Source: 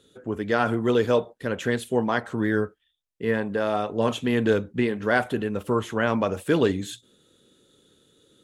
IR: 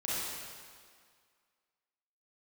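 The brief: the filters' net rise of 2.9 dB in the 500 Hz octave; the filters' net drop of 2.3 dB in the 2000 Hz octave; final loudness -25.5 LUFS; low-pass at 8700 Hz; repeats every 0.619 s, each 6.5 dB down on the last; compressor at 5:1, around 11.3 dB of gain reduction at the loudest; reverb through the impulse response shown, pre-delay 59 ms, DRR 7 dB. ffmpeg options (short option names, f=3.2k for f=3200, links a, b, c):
-filter_complex "[0:a]lowpass=8.7k,equalizer=f=500:t=o:g=3.5,equalizer=f=2k:t=o:g=-3.5,acompressor=threshold=-27dB:ratio=5,aecho=1:1:619|1238|1857|2476|3095|3714:0.473|0.222|0.105|0.0491|0.0231|0.0109,asplit=2[a][b];[1:a]atrim=start_sample=2205,adelay=59[c];[b][c]afir=irnorm=-1:irlink=0,volume=-13dB[d];[a][d]amix=inputs=2:normalize=0,volume=5dB"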